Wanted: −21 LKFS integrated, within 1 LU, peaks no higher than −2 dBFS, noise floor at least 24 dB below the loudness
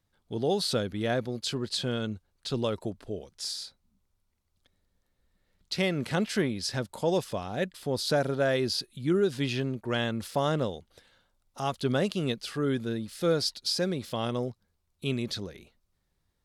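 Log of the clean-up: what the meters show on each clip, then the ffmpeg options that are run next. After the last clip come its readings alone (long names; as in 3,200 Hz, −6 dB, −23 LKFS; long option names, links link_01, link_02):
integrated loudness −30.0 LKFS; sample peak −15.5 dBFS; target loudness −21.0 LKFS
→ -af "volume=9dB"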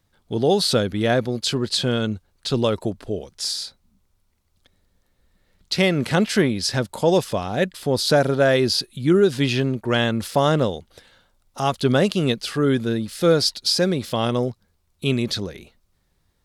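integrated loudness −21.0 LKFS; sample peak −6.5 dBFS; background noise floor −67 dBFS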